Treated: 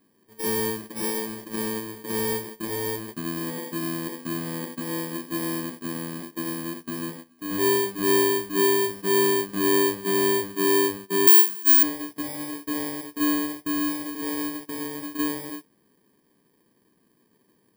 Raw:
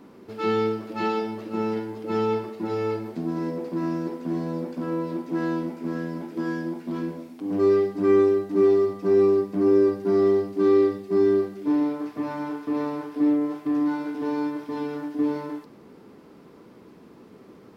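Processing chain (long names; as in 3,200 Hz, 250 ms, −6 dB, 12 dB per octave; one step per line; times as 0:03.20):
samples in bit-reversed order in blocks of 32 samples
noise gate −35 dBFS, range −14 dB
0:11.27–0:11.83: spectral tilt +4 dB per octave
level −2.5 dB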